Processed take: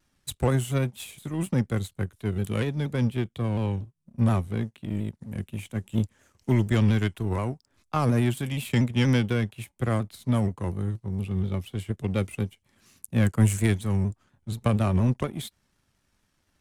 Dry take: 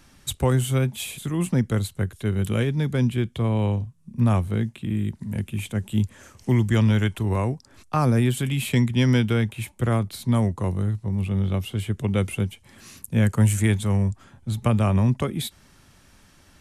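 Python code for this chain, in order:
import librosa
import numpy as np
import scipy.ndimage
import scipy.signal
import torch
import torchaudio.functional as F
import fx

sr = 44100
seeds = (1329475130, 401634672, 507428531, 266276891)

y = fx.power_curve(x, sr, exponent=1.4)
y = fx.vibrato_shape(y, sr, shape='saw_down', rate_hz=4.2, depth_cents=100.0)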